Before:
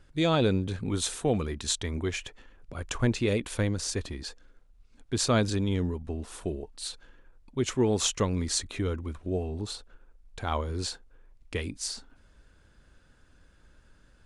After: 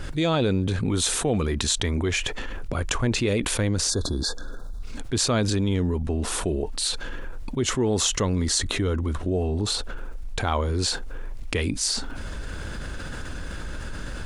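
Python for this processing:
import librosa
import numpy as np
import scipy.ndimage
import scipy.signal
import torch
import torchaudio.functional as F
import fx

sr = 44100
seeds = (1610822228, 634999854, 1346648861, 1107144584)

y = fx.spec_erase(x, sr, start_s=3.9, length_s=0.92, low_hz=1700.0, high_hz=3400.0)
y = fx.notch(y, sr, hz=2400.0, q=10.0, at=(7.6, 9.64))
y = fx.env_flatten(y, sr, amount_pct=70)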